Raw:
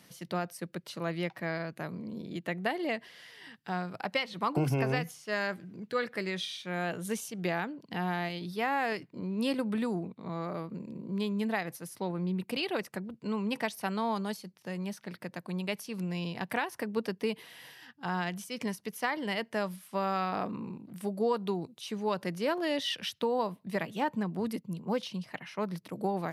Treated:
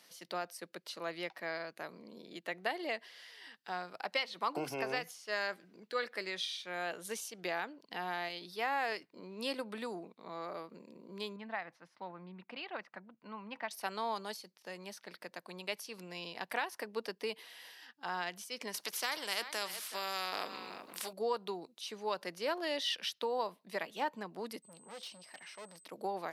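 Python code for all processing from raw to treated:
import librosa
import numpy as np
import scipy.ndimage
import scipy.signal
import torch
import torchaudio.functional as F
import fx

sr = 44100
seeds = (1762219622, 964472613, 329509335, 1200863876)

y = fx.chain(x, sr, fx.lowpass(hz=1900.0, slope=12),
    fx.peak_eq(hz=420.0, db=-11.5, octaves=0.8), at=(11.36, 13.71))
y = fx.chain(y, sr, fx.echo_single(ms=375, db=-19.5),
    fx.spectral_comp(ratio=2.0), at=(18.74, 21.13))
y = fx.tube_stage(y, sr, drive_db=40.0, bias=0.35, at=(24.62, 25.83), fade=0.02)
y = fx.dmg_tone(y, sr, hz=8200.0, level_db=-57.0, at=(24.62, 25.83), fade=0.02)
y = scipy.signal.sosfilt(scipy.signal.butter(2, 420.0, 'highpass', fs=sr, output='sos'), y)
y = fx.peak_eq(y, sr, hz=4600.0, db=4.5, octaves=0.84)
y = y * 10.0 ** (-3.5 / 20.0)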